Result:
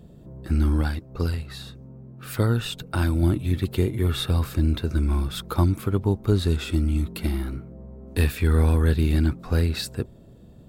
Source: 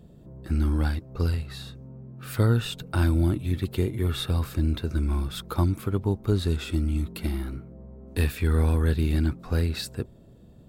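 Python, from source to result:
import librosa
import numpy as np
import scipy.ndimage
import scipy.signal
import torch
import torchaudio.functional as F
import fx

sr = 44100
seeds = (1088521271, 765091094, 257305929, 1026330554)

y = fx.hpss(x, sr, part='harmonic', gain_db=-4, at=(0.81, 3.23))
y = F.gain(torch.from_numpy(y), 3.0).numpy()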